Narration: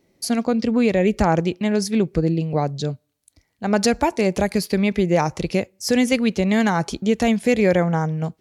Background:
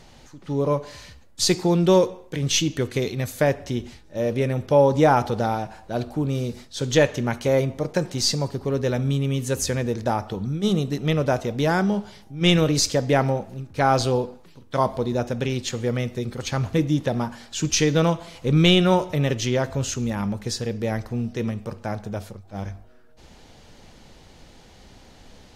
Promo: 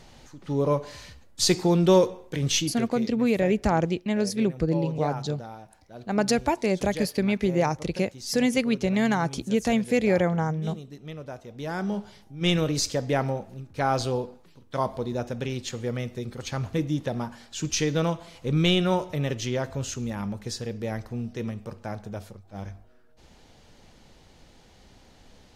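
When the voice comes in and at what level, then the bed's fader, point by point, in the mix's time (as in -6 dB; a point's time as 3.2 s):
2.45 s, -5.0 dB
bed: 2.48 s -1.5 dB
3.17 s -17 dB
11.45 s -17 dB
11.94 s -5.5 dB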